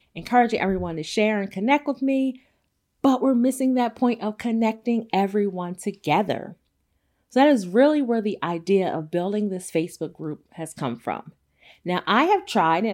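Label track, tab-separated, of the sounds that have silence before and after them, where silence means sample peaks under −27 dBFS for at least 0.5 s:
3.040000	6.460000	sound
7.360000	11.190000	sound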